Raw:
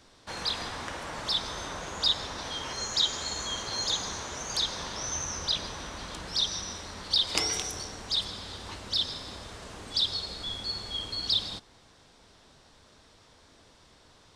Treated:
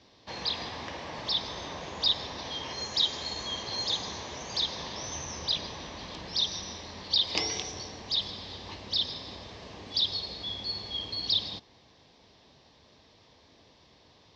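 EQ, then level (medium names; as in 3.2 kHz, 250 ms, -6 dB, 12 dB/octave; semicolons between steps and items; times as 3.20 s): high-pass 68 Hz; steep low-pass 5.6 kHz 36 dB/octave; peaking EQ 1.4 kHz -12.5 dB 0.33 oct; 0.0 dB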